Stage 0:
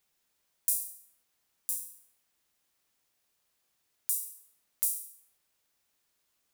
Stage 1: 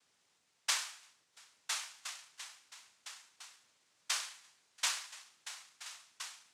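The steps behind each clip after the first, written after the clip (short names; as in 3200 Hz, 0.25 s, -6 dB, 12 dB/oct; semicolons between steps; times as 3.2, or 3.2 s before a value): spectral delete 0.36–1.33, 630–3700 Hz; delay with a stepping band-pass 0.342 s, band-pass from 1600 Hz, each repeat 0.7 oct, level -1.5 dB; noise vocoder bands 2; gain +5.5 dB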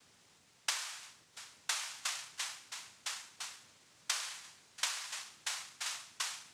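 low shelf 230 Hz +11.5 dB; compressor 16:1, threshold -41 dBFS, peak gain reduction 14.5 dB; gain +9 dB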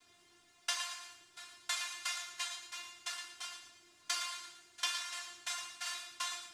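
resonator 350 Hz, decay 0.2 s, harmonics all, mix 90%; thinning echo 0.114 s, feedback 35%, level -9 dB; reverb, pre-delay 3 ms, DRR 3.5 dB; gain +9 dB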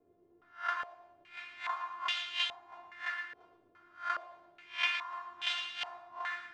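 spectral swells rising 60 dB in 0.31 s; stepped low-pass 2.4 Hz 470–3100 Hz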